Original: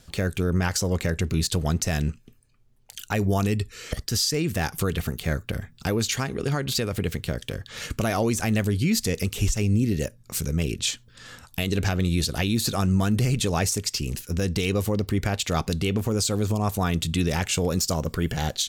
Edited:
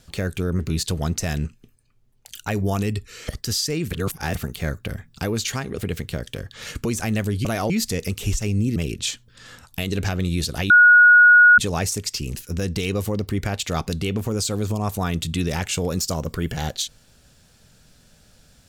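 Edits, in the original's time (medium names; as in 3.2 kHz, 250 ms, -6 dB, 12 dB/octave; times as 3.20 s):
0.59–1.23 s: delete
4.55–4.99 s: reverse
6.42–6.93 s: delete
8.00–8.25 s: move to 8.85 s
9.91–10.56 s: delete
12.50–13.38 s: bleep 1.45 kHz -7.5 dBFS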